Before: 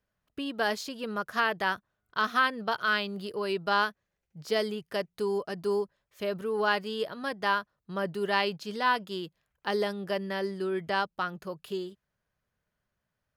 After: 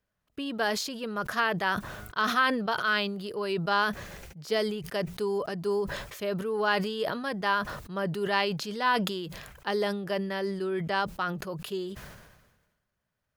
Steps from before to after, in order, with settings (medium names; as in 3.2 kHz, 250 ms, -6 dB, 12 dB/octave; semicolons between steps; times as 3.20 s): decay stretcher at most 47 dB/s